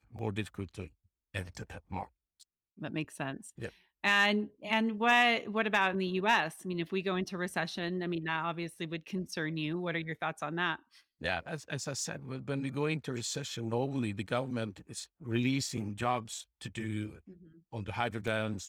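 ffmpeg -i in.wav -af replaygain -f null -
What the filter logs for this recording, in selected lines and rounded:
track_gain = +13.2 dB
track_peak = 0.129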